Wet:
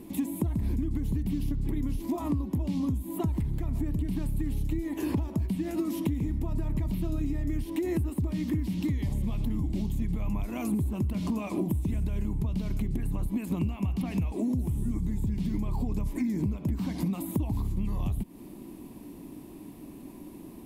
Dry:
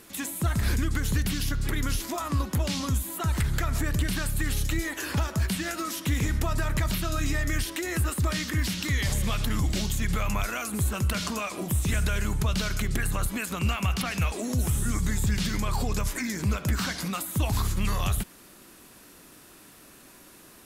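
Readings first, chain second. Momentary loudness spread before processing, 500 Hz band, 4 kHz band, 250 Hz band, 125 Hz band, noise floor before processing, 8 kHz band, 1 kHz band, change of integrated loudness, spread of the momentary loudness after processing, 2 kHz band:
3 LU, -2.5 dB, -17.5 dB, +2.5 dB, -2.5 dB, -52 dBFS, -17.0 dB, -10.5 dB, -3.0 dB, 10 LU, -17.5 dB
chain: FFT filter 120 Hz 0 dB, 300 Hz +6 dB, 490 Hz -8 dB, 980 Hz -6 dB, 1.4 kHz -25 dB, 2.2 kHz -14 dB, 6.3 kHz -21 dB, 13 kHz -13 dB; compression 12:1, threshold -34 dBFS, peak gain reduction 15 dB; trim +8.5 dB

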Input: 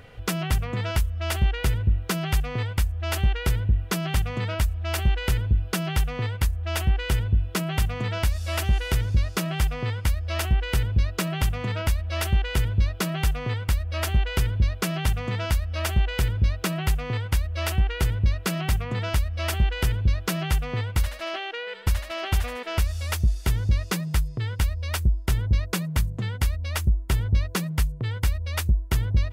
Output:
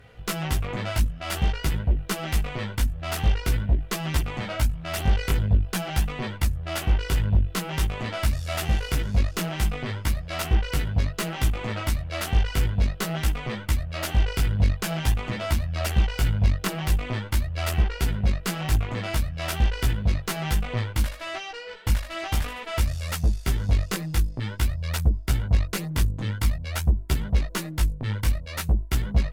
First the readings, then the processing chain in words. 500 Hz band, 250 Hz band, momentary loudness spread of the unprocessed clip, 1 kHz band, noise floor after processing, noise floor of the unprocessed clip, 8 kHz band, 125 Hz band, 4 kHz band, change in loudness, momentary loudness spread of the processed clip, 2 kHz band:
-1.0 dB, 0.0 dB, 3 LU, 0.0 dB, -38 dBFS, -36 dBFS, 0.0 dB, -1.0 dB, -0.5 dB, -0.5 dB, 4 LU, -1.0 dB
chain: Chebyshev shaper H 3 -16 dB, 5 -18 dB, 6 -17 dB, 7 -24 dB, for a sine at -13 dBFS; chorus voices 2, 0.48 Hz, delay 17 ms, depth 3.8 ms; trim +2.5 dB

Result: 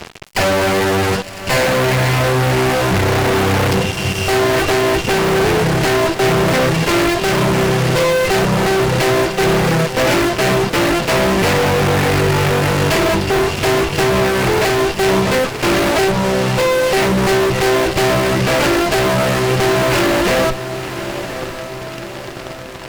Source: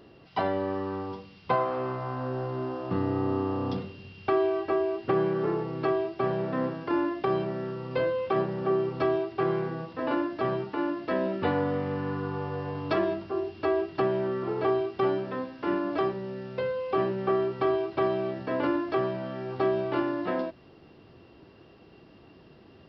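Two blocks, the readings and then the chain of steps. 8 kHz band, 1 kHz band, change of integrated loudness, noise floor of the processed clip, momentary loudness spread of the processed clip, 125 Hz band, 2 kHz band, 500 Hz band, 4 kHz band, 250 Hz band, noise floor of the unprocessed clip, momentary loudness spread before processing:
no reading, +14.0 dB, +14.5 dB, -29 dBFS, 5 LU, +18.5 dB, +21.5 dB, +12.5 dB, +26.5 dB, +12.5 dB, -54 dBFS, 6 LU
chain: comb filter that takes the minimum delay 0.41 ms; reverb removal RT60 0.55 s; peaking EQ 280 Hz -11 dB 0.51 oct; fuzz box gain 52 dB, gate -52 dBFS; echo that smears into a reverb 1047 ms, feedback 56%, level -11 dB

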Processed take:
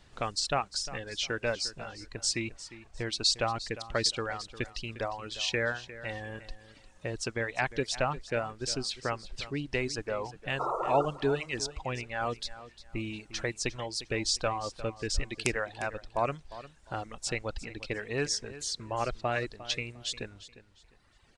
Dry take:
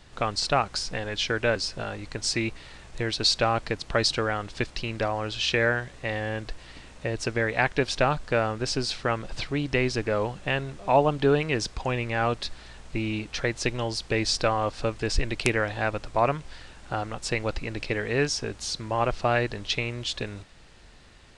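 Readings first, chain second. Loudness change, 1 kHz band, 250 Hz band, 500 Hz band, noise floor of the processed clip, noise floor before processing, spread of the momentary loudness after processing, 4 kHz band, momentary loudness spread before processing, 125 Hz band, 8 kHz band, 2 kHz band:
-6.0 dB, -6.0 dB, -8.0 dB, -7.0 dB, -60 dBFS, -49 dBFS, 11 LU, -4.0 dB, 10 LU, -8.5 dB, -1.0 dB, -6.5 dB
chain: painted sound noise, 10.59–11.06 s, 330–1400 Hz -24 dBFS; dynamic bell 7.5 kHz, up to +7 dB, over -48 dBFS, Q 1.2; reverb removal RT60 1.9 s; on a send: feedback delay 353 ms, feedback 26%, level -15.5 dB; on the sum: trim -6 dB

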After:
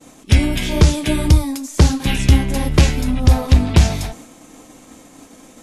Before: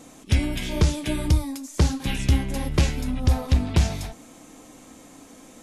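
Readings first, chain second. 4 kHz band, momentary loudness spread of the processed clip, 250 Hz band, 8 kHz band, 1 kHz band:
+8.0 dB, 6 LU, +8.0 dB, +8.0 dB, +8.0 dB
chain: expander -42 dBFS; trim +8 dB

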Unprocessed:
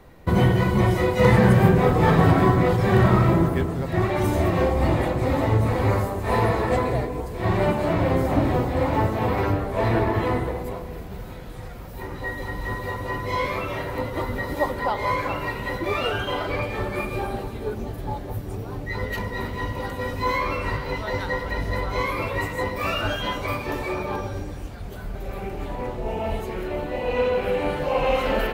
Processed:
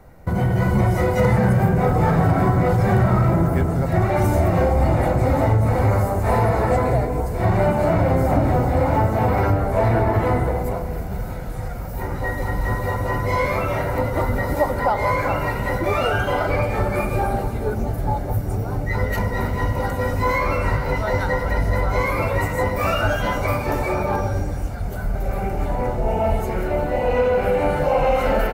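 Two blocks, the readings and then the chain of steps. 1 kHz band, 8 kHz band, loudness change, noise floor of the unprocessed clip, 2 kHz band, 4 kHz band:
+3.5 dB, +3.5 dB, +3.0 dB, -35 dBFS, +2.0 dB, -3.0 dB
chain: in parallel at -7 dB: saturation -19 dBFS, distortion -10 dB; on the sum: comb 1.4 ms, depth 35%; compression 3:1, threshold -18 dBFS, peak gain reduction 7.5 dB; peaking EQ 3.3 kHz -10.5 dB 0.9 oct; level rider gain up to 6 dB; trim -2 dB

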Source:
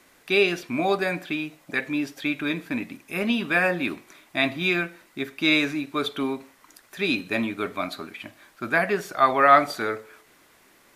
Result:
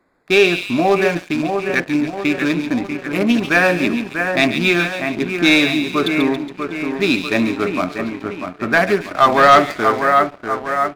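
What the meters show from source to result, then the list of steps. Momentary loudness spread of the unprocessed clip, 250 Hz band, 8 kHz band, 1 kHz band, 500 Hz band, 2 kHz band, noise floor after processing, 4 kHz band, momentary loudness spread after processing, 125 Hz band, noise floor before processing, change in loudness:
13 LU, +10.0 dB, +10.5 dB, +8.0 dB, +9.0 dB, +7.5 dB, -40 dBFS, +7.5 dB, 10 LU, +10.0 dB, -58 dBFS, +7.5 dB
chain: local Wiener filter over 15 samples; two-band feedback delay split 2.3 kHz, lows 642 ms, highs 139 ms, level -6.5 dB; waveshaping leveller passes 2; trim +1.5 dB

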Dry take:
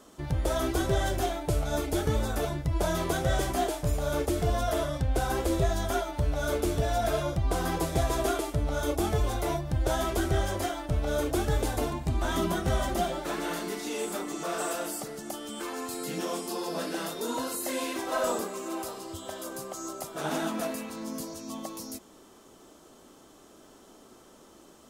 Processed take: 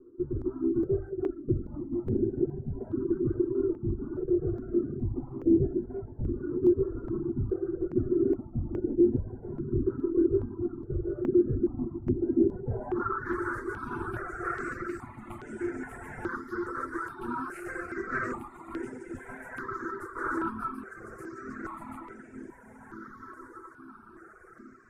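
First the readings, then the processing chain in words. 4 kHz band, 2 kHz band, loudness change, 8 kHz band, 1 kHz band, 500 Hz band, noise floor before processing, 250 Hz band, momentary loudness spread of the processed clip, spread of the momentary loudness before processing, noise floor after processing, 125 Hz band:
under -25 dB, -2.0 dB, -0.5 dB, under -20 dB, -6.0 dB, -0.5 dB, -55 dBFS, +4.0 dB, 17 LU, 9 LU, -51 dBFS, -4.0 dB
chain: comb filter that takes the minimum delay 8.2 ms; on a send: echo that smears into a reverb 1527 ms, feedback 44%, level -5 dB; on the sum: reverb removal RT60 1.8 s; FFT filter 180 Hz 0 dB, 380 Hz +9 dB, 570 Hz -12 dB, 1.4 kHz +9 dB, 2.9 kHz -25 dB, 9 kHz +13 dB; overload inside the chain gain 20.5 dB; low-pass sweep 330 Hz -> 2.3 kHz, 12.60–13.33 s; stepped phaser 2.4 Hz 740–4200 Hz

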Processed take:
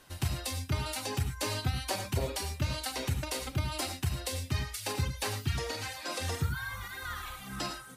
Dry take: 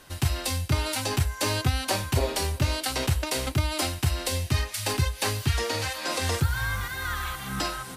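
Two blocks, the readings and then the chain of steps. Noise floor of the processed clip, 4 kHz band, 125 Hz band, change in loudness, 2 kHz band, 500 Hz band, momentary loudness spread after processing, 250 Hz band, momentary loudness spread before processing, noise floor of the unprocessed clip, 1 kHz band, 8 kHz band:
-47 dBFS, -7.0 dB, -6.5 dB, -7.0 dB, -8.0 dB, -7.5 dB, 5 LU, -7.0 dB, 4 LU, -40 dBFS, -7.0 dB, -7.0 dB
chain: reverb removal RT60 1.3 s; gated-style reverb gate 130 ms rising, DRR 6 dB; trim -6.5 dB

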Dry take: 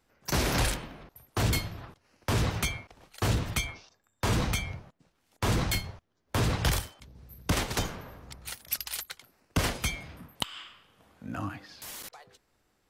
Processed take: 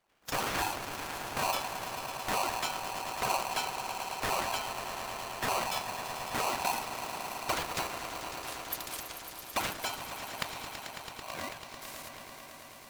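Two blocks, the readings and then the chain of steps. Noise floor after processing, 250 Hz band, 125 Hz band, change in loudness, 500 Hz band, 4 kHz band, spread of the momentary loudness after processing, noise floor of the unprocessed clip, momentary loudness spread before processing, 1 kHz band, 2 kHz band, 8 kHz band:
-49 dBFS, -9.5 dB, -17.5 dB, -3.5 dB, -1.0 dB, -2.0 dB, 11 LU, -74 dBFS, 18 LU, +5.0 dB, -1.0 dB, -2.0 dB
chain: coarse spectral quantiser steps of 30 dB; echo with a slow build-up 110 ms, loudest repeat 5, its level -12 dB; polarity switched at an audio rate 860 Hz; trim -5 dB

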